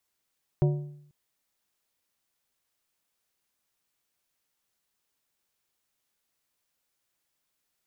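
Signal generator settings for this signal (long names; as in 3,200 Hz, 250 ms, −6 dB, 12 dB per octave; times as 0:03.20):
struck metal plate, length 0.49 s, lowest mode 146 Hz, modes 5, decay 0.72 s, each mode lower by 7 dB, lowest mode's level −17.5 dB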